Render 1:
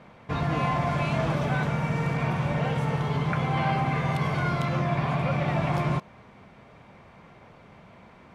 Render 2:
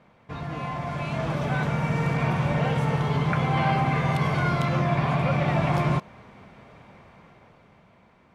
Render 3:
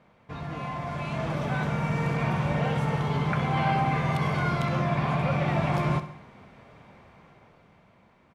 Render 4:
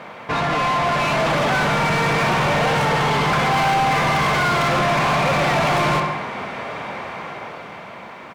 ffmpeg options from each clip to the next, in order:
ffmpeg -i in.wav -af "dynaudnorm=framelen=210:gausssize=13:maxgain=10dB,volume=-7dB" out.wav
ffmpeg -i in.wav -af "aecho=1:1:65|130|195|260|325:0.224|0.119|0.0629|0.0333|0.0177,volume=-2.5dB" out.wav
ffmpeg -i in.wav -filter_complex "[0:a]highshelf=frequency=6100:gain=6,asplit=2[link_01][link_02];[link_02]highpass=frequency=720:poles=1,volume=32dB,asoftclip=type=tanh:threshold=-13.5dB[link_03];[link_01][link_03]amix=inputs=2:normalize=0,lowpass=frequency=2800:poles=1,volume=-6dB,volume=2dB" out.wav

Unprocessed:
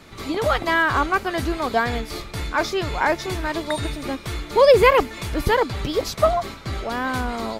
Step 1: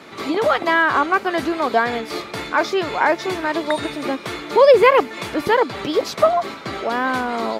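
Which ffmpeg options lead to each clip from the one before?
ffmpeg -i in.wav -filter_complex "[0:a]highshelf=frequency=5000:gain=-10.5,asplit=2[link_01][link_02];[link_02]acompressor=threshold=-27dB:ratio=6,volume=1.5dB[link_03];[link_01][link_03]amix=inputs=2:normalize=0,highpass=250,volume=1dB" out.wav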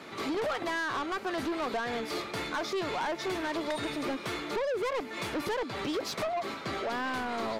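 ffmpeg -i in.wav -af "acompressor=threshold=-18dB:ratio=6,asoftclip=type=tanh:threshold=-23.5dB,volume=-4.5dB" out.wav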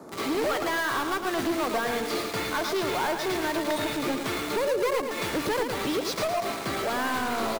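ffmpeg -i in.wav -filter_complex "[0:a]acrossover=split=140|1200|6200[link_01][link_02][link_03][link_04];[link_03]acrusher=bits=6:mix=0:aa=0.000001[link_05];[link_01][link_02][link_05][link_04]amix=inputs=4:normalize=0,aecho=1:1:111|222|333|444|555:0.473|0.194|0.0795|0.0326|0.0134,volume=4dB" out.wav

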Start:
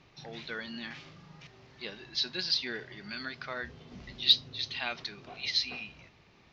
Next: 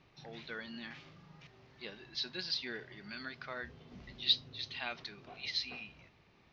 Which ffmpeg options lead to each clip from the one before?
ffmpeg -i in.wav -af "highshelf=frequency=7000:gain=-10,volume=-4.5dB" out.wav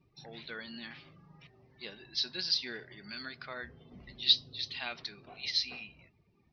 ffmpeg -i in.wav -af "afftdn=noise_reduction=20:noise_floor=-61,lowpass=frequency=5600:width_type=q:width=2.6" out.wav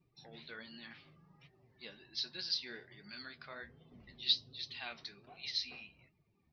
ffmpeg -i in.wav -af "flanger=delay=5.3:depth=8.9:regen=48:speed=1.3:shape=triangular,volume=-2dB" out.wav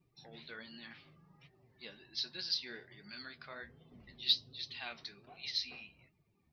ffmpeg -i in.wav -af "aeval=exprs='0.126*(cos(1*acos(clip(val(0)/0.126,-1,1)))-cos(1*PI/2))+0.00126*(cos(7*acos(clip(val(0)/0.126,-1,1)))-cos(7*PI/2))':channel_layout=same,volume=1dB" out.wav

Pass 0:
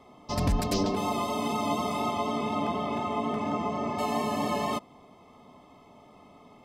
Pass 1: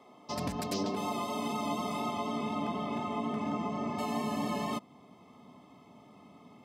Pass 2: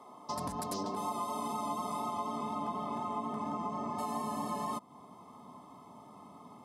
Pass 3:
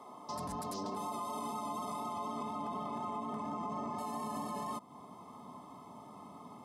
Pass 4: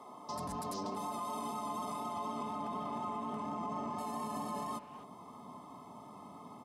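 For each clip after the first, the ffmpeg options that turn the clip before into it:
ffmpeg -i in.wav -filter_complex "[0:a]highpass=190,asubboost=boost=3.5:cutoff=240,asplit=2[link_01][link_02];[link_02]alimiter=level_in=2dB:limit=-24dB:level=0:latency=1:release=386,volume=-2dB,volume=-2dB[link_03];[link_01][link_03]amix=inputs=2:normalize=0,volume=-7.5dB" out.wav
ffmpeg -i in.wav -af "equalizer=frequency=1000:width_type=o:width=0.67:gain=10,equalizer=frequency=2500:width_type=o:width=0.67:gain=-8,equalizer=frequency=10000:width_type=o:width=0.67:gain=11,acompressor=threshold=-38dB:ratio=2" out.wav
ffmpeg -i in.wav -af "alimiter=level_in=9dB:limit=-24dB:level=0:latency=1:release=26,volume=-9dB,volume=1.5dB" out.wav
ffmpeg -i in.wav -filter_complex "[0:a]asplit=2[link_01][link_02];[link_02]adelay=250,highpass=300,lowpass=3400,asoftclip=type=hard:threshold=-39.5dB,volume=-11dB[link_03];[link_01][link_03]amix=inputs=2:normalize=0" out.wav

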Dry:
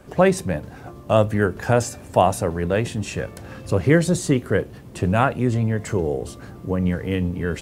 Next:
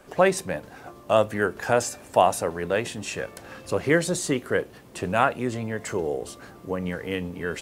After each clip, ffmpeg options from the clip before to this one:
ffmpeg -i in.wav -af "equalizer=frequency=83:width=0.38:gain=-14" out.wav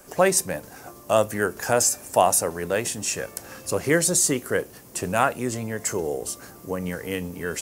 ffmpeg -i in.wav -af "aexciter=amount=4.7:drive=2.8:freq=5100" out.wav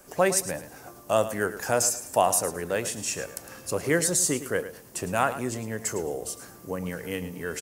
ffmpeg -i in.wav -af "aecho=1:1:108|216|324:0.224|0.056|0.014,volume=-3.5dB" out.wav

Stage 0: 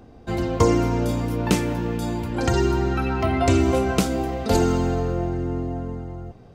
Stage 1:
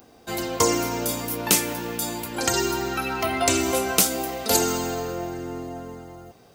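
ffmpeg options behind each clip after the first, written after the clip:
ffmpeg -i in.wav -af "aemphasis=mode=production:type=riaa" out.wav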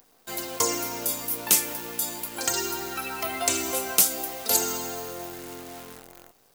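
ffmpeg -i in.wav -af "acrusher=bits=7:dc=4:mix=0:aa=0.000001,crystalizer=i=1:c=0,lowshelf=frequency=280:gain=-8,volume=-5.5dB" out.wav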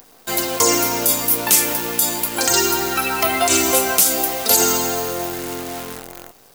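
ffmpeg -i in.wav -af "alimiter=level_in=13dB:limit=-1dB:release=50:level=0:latency=1,volume=-1dB" out.wav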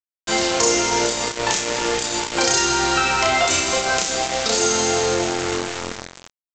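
ffmpeg -i in.wav -af "acompressor=threshold=-18dB:ratio=12,aecho=1:1:32.07|64.14:0.794|0.355,aresample=16000,acrusher=bits=3:mix=0:aa=0.5,aresample=44100,volume=2.5dB" out.wav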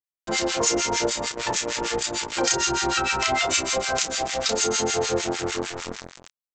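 ffmpeg -i in.wav -filter_complex "[0:a]acrossover=split=1200[link_01][link_02];[link_01]aeval=exprs='val(0)*(1-1/2+1/2*cos(2*PI*6.6*n/s))':channel_layout=same[link_03];[link_02]aeval=exprs='val(0)*(1-1/2-1/2*cos(2*PI*6.6*n/s))':channel_layout=same[link_04];[link_03][link_04]amix=inputs=2:normalize=0" out.wav

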